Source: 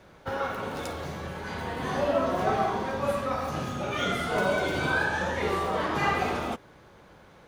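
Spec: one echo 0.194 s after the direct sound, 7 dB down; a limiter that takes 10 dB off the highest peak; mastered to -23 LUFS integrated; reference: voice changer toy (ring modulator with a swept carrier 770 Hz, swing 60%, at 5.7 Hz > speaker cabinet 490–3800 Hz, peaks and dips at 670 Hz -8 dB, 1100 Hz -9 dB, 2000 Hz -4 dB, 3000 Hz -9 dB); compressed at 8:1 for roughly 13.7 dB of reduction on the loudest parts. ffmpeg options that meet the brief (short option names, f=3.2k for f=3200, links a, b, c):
-af "acompressor=threshold=-36dB:ratio=8,alimiter=level_in=12dB:limit=-24dB:level=0:latency=1,volume=-12dB,aecho=1:1:194:0.447,aeval=exprs='val(0)*sin(2*PI*770*n/s+770*0.6/5.7*sin(2*PI*5.7*n/s))':c=same,highpass=490,equalizer=f=670:t=q:w=4:g=-8,equalizer=f=1.1k:t=q:w=4:g=-9,equalizer=f=2k:t=q:w=4:g=-4,equalizer=f=3k:t=q:w=4:g=-9,lowpass=f=3.8k:w=0.5412,lowpass=f=3.8k:w=1.3066,volume=28.5dB"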